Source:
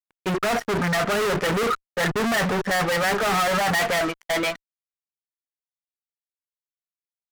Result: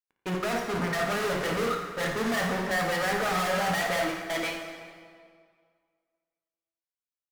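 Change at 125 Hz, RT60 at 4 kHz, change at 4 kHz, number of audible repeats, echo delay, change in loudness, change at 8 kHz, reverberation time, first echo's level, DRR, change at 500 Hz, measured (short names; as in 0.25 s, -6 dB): -6.0 dB, 1.5 s, -6.0 dB, 2, 55 ms, -5.5 dB, -6.0 dB, 2.0 s, -8.5 dB, 1.0 dB, -5.5 dB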